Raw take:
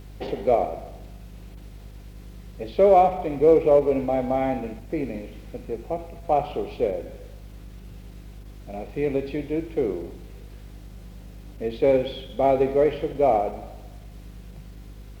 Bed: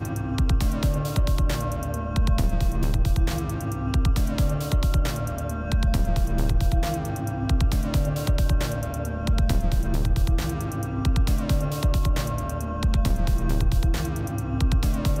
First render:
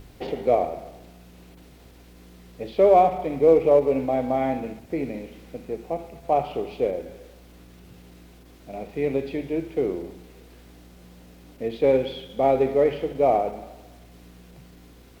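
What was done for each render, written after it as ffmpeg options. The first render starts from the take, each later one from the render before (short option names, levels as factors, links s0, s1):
-af "bandreject=f=50:t=h:w=4,bandreject=f=100:t=h:w=4,bandreject=f=150:t=h:w=4,bandreject=f=200:t=h:w=4"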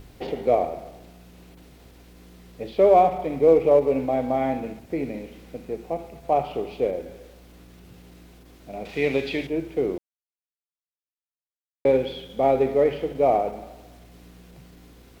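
-filter_complex "[0:a]asettb=1/sr,asplit=3[s0][s1][s2];[s0]atrim=end=8.854[s3];[s1]atrim=start=8.85:end=9.47,asetpts=PTS-STARTPTS,afade=t=in:d=0.004:c=qsin,afade=t=out:st=0.616:d=0.004:c=qsin,equalizer=f=3400:t=o:w=2.6:g=13[s4];[s2]atrim=start=9.466[s5];[s3][s4]acrossfade=d=0.004:c1=hsin:c2=qsin[s6];[s6][s5]acrossfade=d=0.004:c1=qsin:c2=hsin,asplit=3[s7][s8][s9];[s7]atrim=end=9.98,asetpts=PTS-STARTPTS,afade=t=out:st=9.976:d=0.004:c=hsin[s10];[s8]atrim=start=9.98:end=11.85,asetpts=PTS-STARTPTS,volume=0[s11];[s9]atrim=start=11.85,asetpts=PTS-STARTPTS,afade=t=in:d=0.004:c=hsin[s12];[s10][s11][s12]concat=n=3:v=0:a=1"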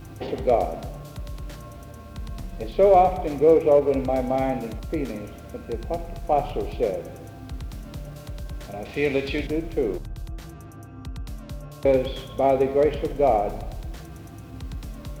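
-filter_complex "[1:a]volume=0.211[s0];[0:a][s0]amix=inputs=2:normalize=0"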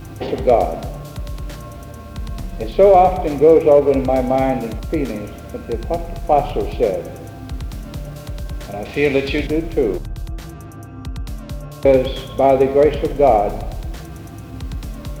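-af "volume=2.24,alimiter=limit=0.794:level=0:latency=1"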